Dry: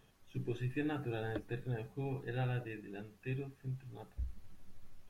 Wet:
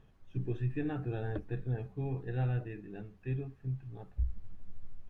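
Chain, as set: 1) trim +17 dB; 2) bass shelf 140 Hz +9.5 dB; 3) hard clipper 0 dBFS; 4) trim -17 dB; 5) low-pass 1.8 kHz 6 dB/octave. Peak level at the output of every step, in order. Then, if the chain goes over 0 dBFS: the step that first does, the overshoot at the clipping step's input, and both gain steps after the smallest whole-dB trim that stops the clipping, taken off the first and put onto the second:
-8.0 dBFS, -5.5 dBFS, -5.5 dBFS, -22.5 dBFS, -22.5 dBFS; nothing clips

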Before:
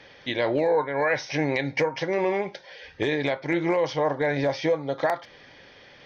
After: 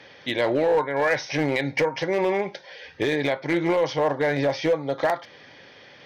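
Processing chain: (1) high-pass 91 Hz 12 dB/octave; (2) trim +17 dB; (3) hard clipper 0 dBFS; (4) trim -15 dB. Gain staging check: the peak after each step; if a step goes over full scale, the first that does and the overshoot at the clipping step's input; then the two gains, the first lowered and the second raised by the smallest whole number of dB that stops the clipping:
-12.5 dBFS, +4.5 dBFS, 0.0 dBFS, -15.0 dBFS; step 2, 4.5 dB; step 2 +12 dB, step 4 -10 dB

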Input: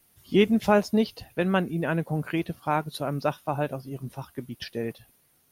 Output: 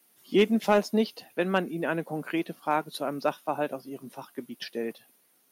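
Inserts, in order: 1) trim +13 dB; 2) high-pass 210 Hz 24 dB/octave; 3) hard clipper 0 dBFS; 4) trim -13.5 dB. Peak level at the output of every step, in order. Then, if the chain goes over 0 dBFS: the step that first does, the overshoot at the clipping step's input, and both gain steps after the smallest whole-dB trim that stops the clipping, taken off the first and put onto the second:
+4.5 dBFS, +4.5 dBFS, 0.0 dBFS, -13.5 dBFS; step 1, 4.5 dB; step 1 +8 dB, step 4 -8.5 dB

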